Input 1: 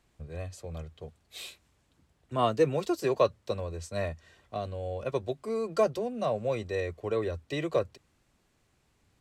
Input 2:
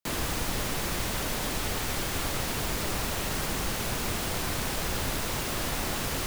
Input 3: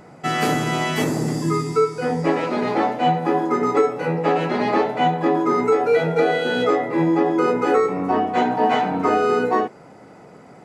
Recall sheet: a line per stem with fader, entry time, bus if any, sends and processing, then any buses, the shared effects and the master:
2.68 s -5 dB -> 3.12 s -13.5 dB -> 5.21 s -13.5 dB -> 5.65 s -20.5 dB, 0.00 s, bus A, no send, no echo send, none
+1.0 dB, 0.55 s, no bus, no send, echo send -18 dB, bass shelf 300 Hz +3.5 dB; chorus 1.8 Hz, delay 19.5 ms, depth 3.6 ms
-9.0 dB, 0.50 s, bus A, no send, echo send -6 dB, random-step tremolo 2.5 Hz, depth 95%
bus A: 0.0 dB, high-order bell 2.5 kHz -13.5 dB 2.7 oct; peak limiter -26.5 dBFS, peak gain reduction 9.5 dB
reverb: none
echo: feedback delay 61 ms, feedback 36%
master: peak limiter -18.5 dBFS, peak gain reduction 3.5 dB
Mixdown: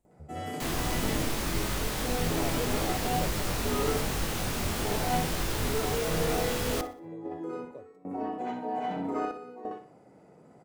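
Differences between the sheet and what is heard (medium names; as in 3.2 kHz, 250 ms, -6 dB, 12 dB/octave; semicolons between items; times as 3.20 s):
stem 3: entry 0.50 s -> 0.05 s; master: missing peak limiter -18.5 dBFS, peak gain reduction 3.5 dB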